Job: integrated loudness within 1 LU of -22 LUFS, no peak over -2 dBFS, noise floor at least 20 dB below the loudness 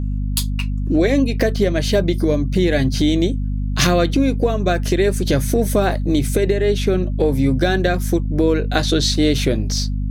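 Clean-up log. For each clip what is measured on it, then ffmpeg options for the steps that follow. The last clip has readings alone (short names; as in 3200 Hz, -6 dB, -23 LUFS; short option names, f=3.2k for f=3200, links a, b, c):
hum 50 Hz; harmonics up to 250 Hz; hum level -19 dBFS; loudness -18.5 LUFS; peak -2.0 dBFS; loudness target -22.0 LUFS
-> -af "bandreject=f=50:t=h:w=4,bandreject=f=100:t=h:w=4,bandreject=f=150:t=h:w=4,bandreject=f=200:t=h:w=4,bandreject=f=250:t=h:w=4"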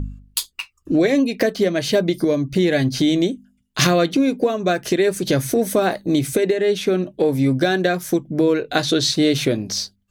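hum none; loudness -19.5 LUFS; peak -2.5 dBFS; loudness target -22.0 LUFS
-> -af "volume=-2.5dB"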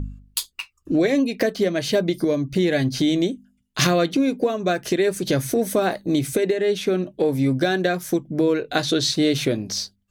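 loudness -22.0 LUFS; peak -5.0 dBFS; noise floor -67 dBFS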